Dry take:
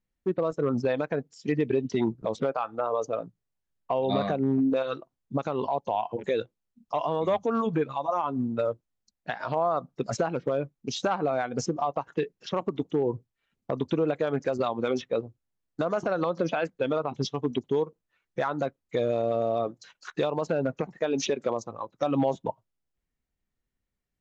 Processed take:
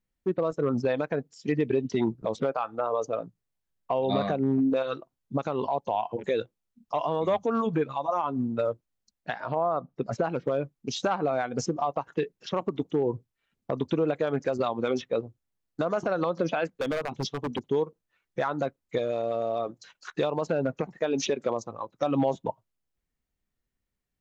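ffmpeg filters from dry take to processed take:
ffmpeg -i in.wav -filter_complex "[0:a]asettb=1/sr,asplit=3[link_01][link_02][link_03];[link_01]atrim=end=9.404[link_04];[link_02]atrim=start=9.4:end=10.24,asetpts=PTS-STARTPTS,afade=type=in:duration=0.004:curve=qsin,afade=type=out:start_time=0.836:duration=0.004:curve=qsin,lowpass=frequency=1600:poles=1[link_05];[link_03]atrim=start=10.236[link_06];[link_04][link_05]acrossfade=duration=0.004:curve1=hsin:curve2=qsin[link_07];[link_07][link_06]acrossfade=duration=0.004:curve1=qsin:curve2=hsin,asettb=1/sr,asplit=3[link_08][link_09][link_10];[link_08]atrim=end=16.674[link_11];[link_09]atrim=start=16.67:end=17.67,asetpts=PTS-STARTPTS,afade=type=in:duration=0.004:curve=qsin,afade=type=out:start_time=0.996:duration=0.004:curve=qsin,aeval=exprs='0.075*(abs(mod(val(0)/0.075+3,4)-2)-1)':channel_layout=same[link_12];[link_10]atrim=start=17.666[link_13];[link_11][link_12]acrossfade=duration=0.004:curve1=hsin:curve2=qsin[link_14];[link_14][link_13]acrossfade=duration=0.004:curve1=qsin:curve2=hsin,asettb=1/sr,asplit=3[link_15][link_16][link_17];[link_15]atrim=end=18.984[link_18];[link_16]atrim=start=18.98:end=19.69,asetpts=PTS-STARTPTS,afade=type=in:duration=0.004:curve=qsin,afade=type=out:start_time=0.706:duration=0.004:curve=qsin,lowshelf=frequency=370:gain=-7.5[link_19];[link_17]atrim=start=19.686[link_20];[link_18][link_19]acrossfade=duration=0.004:curve1=hsin:curve2=qsin[link_21];[link_21][link_20]acrossfade=duration=0.004:curve1=qsin:curve2=hsin" out.wav

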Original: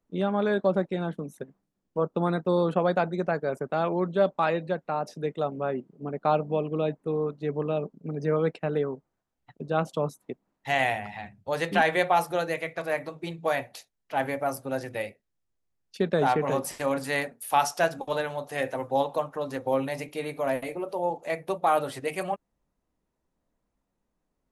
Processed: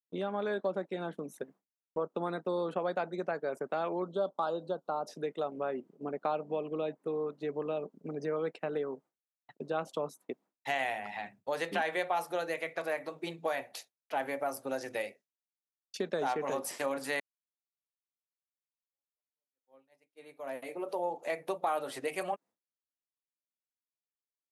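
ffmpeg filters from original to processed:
ffmpeg -i in.wav -filter_complex "[0:a]asettb=1/sr,asplit=3[link_01][link_02][link_03];[link_01]atrim=end=4.024[link_04];[link_02]atrim=start=4.02:end=5.09,asetpts=PTS-STARTPTS,afade=type=in:duration=0.004:curve=qsin,afade=type=out:start_time=1.066:duration=0.004:curve=qsin,asuperstop=centerf=2100:order=8:qfactor=1.3[link_05];[link_03]atrim=start=5.086[link_06];[link_04][link_05]acrossfade=duration=0.004:curve1=hsin:curve2=qsin[link_07];[link_07][link_06]acrossfade=duration=0.004:curve1=qsin:curve2=hsin,asettb=1/sr,asplit=3[link_08][link_09][link_10];[link_08]atrim=end=14.674[link_11];[link_09]atrim=start=14.67:end=16.55,asetpts=PTS-STARTPTS,afade=type=in:duration=0.004:curve=qsin,afade=type=out:start_time=1.876:duration=0.004:curve=qsin,equalizer=frequency=6100:width_type=o:width=0.66:gain=7[link_12];[link_10]atrim=start=16.546[link_13];[link_11][link_12]acrossfade=duration=0.004:curve1=hsin:curve2=qsin[link_14];[link_14][link_13]acrossfade=duration=0.004:curve1=qsin:curve2=hsin,asplit=2[link_15][link_16];[link_15]atrim=end=17.2,asetpts=PTS-STARTPTS,afade=type=out:start_time=17.196:duration=0.004:curve=hsin[link_17];[link_16]atrim=start=17.2,asetpts=PTS-STARTPTS,afade=type=in:duration=3.75:curve=exp[link_18];[link_17][link_18]concat=n=2:v=0:a=1,acompressor=threshold=-32dB:ratio=2.5,highpass=270,agate=range=-33dB:threshold=-52dB:ratio=3:detection=peak" out.wav

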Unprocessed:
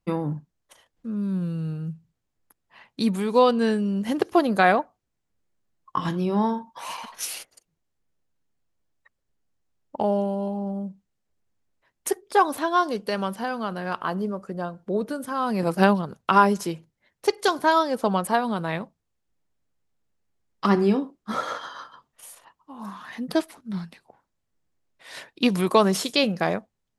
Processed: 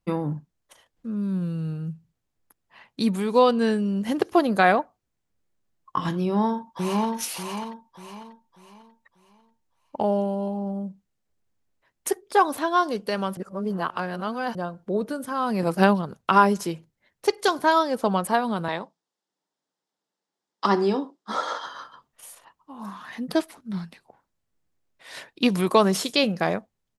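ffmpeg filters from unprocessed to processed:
ffmpeg -i in.wav -filter_complex "[0:a]asplit=2[link_01][link_02];[link_02]afade=type=in:start_time=6.2:duration=0.01,afade=type=out:start_time=7.14:duration=0.01,aecho=0:1:590|1180|1770|2360|2950:0.794328|0.278015|0.0973052|0.0340568|0.0119199[link_03];[link_01][link_03]amix=inputs=2:normalize=0,asettb=1/sr,asplit=3[link_04][link_05][link_06];[link_04]atrim=end=18.684[link_07];[link_05]atrim=start=18.68:end=21.66,asetpts=PTS-STARTPTS,afade=type=in:duration=0.004:curve=qsin,afade=type=out:start_time=2.976:duration=0.004:curve=qsin,highpass=frequency=200:width=0.5412,highpass=frequency=200:width=1.3066,equalizer=frequency=230:width_type=q:width=4:gain=-6,equalizer=frequency=900:width_type=q:width=4:gain=6,equalizer=frequency=2400:width_type=q:width=4:gain=-5,equalizer=frequency=3600:width_type=q:width=4:gain=4,equalizer=frequency=5100:width_type=q:width=4:gain=5,lowpass=frequency=9400:width=0.5412,lowpass=frequency=9400:width=1.3066[link_08];[link_06]atrim=start=21.656[link_09];[link_07][link_08]acrossfade=duration=0.004:curve1=hsin:curve2=qsin[link_10];[link_10][link_09]acrossfade=duration=0.004:curve1=qsin:curve2=hsin,asplit=3[link_11][link_12][link_13];[link_11]atrim=end=13.372[link_14];[link_12]atrim=start=13.368:end=14.552,asetpts=PTS-STARTPTS,areverse[link_15];[link_13]atrim=start=14.548[link_16];[link_14][link_15]acrossfade=duration=0.004:curve1=hsin:curve2=hsin[link_17];[link_17][link_16]acrossfade=duration=0.004:curve1=hsin:curve2=hsin" out.wav

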